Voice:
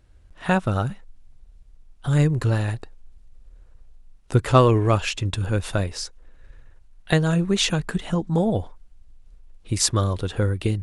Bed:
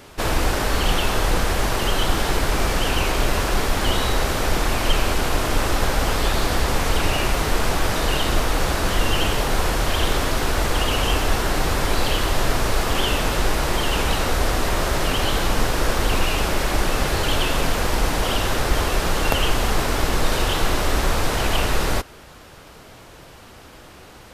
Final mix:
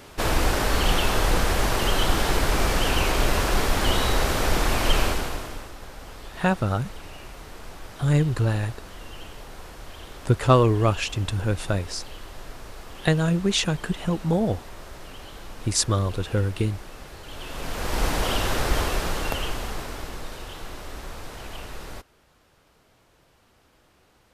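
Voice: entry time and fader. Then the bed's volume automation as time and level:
5.95 s, -1.5 dB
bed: 5.04 s -1.5 dB
5.73 s -20.5 dB
17.23 s -20.5 dB
18.03 s -3 dB
18.78 s -3 dB
20.38 s -17 dB

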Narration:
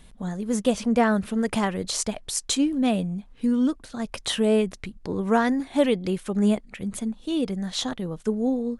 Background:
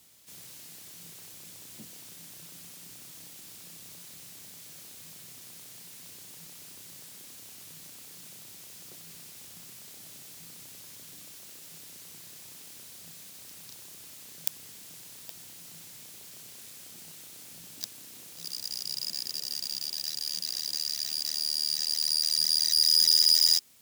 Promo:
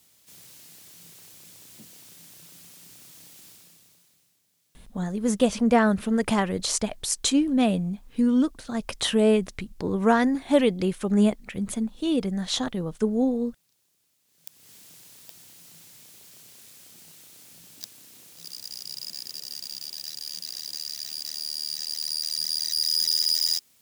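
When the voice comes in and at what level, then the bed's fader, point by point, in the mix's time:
4.75 s, +1.0 dB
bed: 3.47 s -1.5 dB
4.43 s -23 dB
14.23 s -23 dB
14.73 s -2.5 dB

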